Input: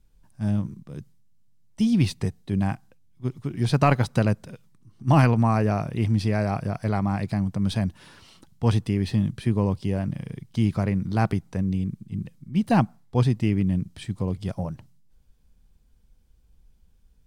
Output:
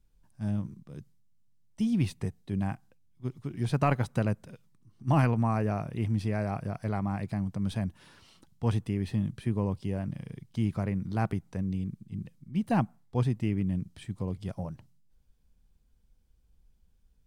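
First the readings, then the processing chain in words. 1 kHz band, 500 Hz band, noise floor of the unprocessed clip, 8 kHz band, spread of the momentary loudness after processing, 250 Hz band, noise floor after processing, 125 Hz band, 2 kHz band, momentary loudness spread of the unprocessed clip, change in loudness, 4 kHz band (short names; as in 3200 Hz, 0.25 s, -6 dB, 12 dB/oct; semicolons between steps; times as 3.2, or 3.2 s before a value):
-6.5 dB, -6.5 dB, -59 dBFS, n/a, 12 LU, -6.5 dB, -66 dBFS, -6.5 dB, -7.0 dB, 12 LU, -6.5 dB, -10.0 dB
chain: dynamic EQ 4600 Hz, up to -6 dB, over -52 dBFS, Q 1.5; gain -6.5 dB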